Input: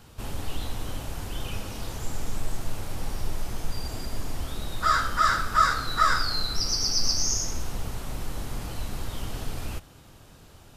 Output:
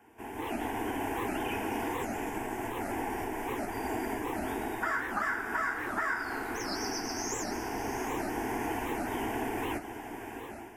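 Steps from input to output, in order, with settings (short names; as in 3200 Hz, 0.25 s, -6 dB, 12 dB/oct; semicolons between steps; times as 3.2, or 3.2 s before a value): AGC gain up to 16.5 dB; three-band isolator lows -20 dB, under 160 Hz, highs -16 dB, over 2300 Hz; fixed phaser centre 830 Hz, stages 8; compressor, threshold -29 dBFS, peak gain reduction 10 dB; HPF 74 Hz 6 dB/oct; high shelf 9300 Hz +5.5 dB; on a send: diffused feedback echo 0.675 s, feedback 43%, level -11.5 dB; on the sum: record warp 78 rpm, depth 250 cents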